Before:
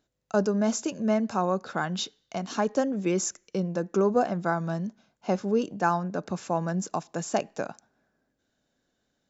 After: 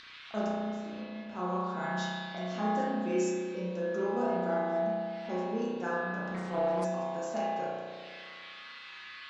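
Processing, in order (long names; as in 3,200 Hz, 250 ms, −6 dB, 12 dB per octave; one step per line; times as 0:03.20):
0:00.47–0:01.27: output level in coarse steps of 20 dB
low-pass that shuts in the quiet parts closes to 1,500 Hz, open at −25.5 dBFS
noise in a band 1,100–4,400 Hz −55 dBFS
tuned comb filter 74 Hz, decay 0.5 s, harmonics odd, mix 90%
upward compression, threshold −42 dBFS
spring reverb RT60 2 s, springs 33 ms, chirp 45 ms, DRR −7.5 dB
0:06.34–0:06.85: highs frequency-modulated by the lows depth 0.39 ms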